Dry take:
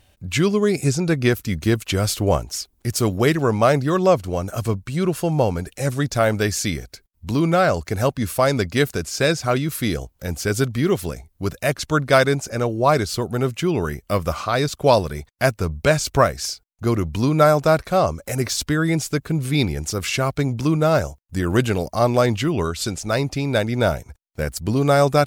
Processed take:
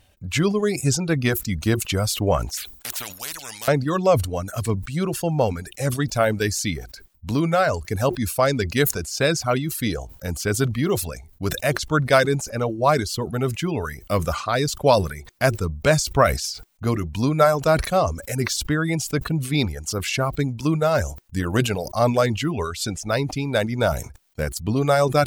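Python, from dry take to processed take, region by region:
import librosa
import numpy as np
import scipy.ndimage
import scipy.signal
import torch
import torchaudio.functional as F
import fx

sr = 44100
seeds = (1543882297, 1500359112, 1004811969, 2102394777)

y = fx.chain(x, sr, fx.tilt_shelf(db=-4.5, hz=1300.0),
    fx.spectral_comp(ratio=10.0), at=(2.57, 3.68))
y = fx.dereverb_blind(y, sr, rt60_s=0.89)
y = fx.notch(y, sr, hz=360.0, q=12.0)
y = fx.sustainer(y, sr, db_per_s=96.0)
y = y * librosa.db_to_amplitude(-1.0)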